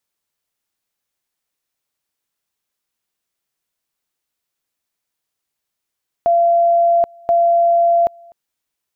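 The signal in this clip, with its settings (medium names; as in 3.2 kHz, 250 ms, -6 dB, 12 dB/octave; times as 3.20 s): two-level tone 684 Hz -10 dBFS, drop 29 dB, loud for 0.78 s, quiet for 0.25 s, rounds 2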